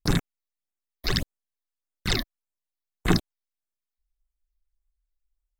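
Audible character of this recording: phasing stages 12, 1.7 Hz, lowest notch 140–5000 Hz

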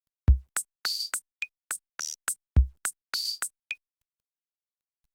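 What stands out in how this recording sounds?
a quantiser's noise floor 12-bit, dither none; tremolo saw down 4 Hz, depth 45%; Opus

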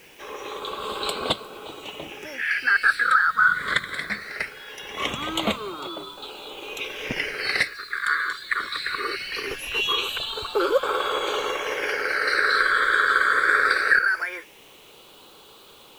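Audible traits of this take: phasing stages 8, 0.21 Hz, lowest notch 800–1800 Hz; a quantiser's noise floor 10-bit, dither triangular

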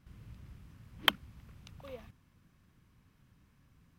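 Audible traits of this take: noise floor -69 dBFS; spectral tilt -3.0 dB/oct

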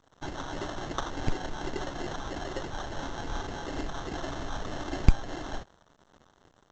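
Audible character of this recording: a quantiser's noise floor 8-bit, dither none; phasing stages 8, 1.7 Hz, lowest notch 670–2200 Hz; aliases and images of a low sample rate 2400 Hz, jitter 0%; A-law

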